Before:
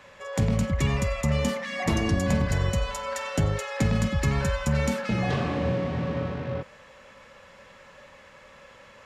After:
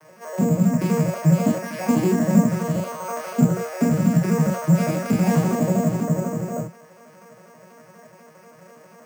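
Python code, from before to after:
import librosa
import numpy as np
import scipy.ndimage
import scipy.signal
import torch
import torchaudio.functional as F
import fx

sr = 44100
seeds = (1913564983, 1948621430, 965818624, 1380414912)

y = fx.vocoder_arp(x, sr, chord='minor triad', root=51, every_ms=81)
y = fx.high_shelf(y, sr, hz=3300.0, db=fx.steps((0.0, -7.0), (4.74, 2.0), (6.02, -8.5)))
y = fx.room_early_taps(y, sr, ms=(24, 41), db=(-5.5, -3.5))
y = np.repeat(scipy.signal.resample_poly(y, 1, 6), 6)[:len(y)]
y = y * librosa.db_to_amplitude(7.0)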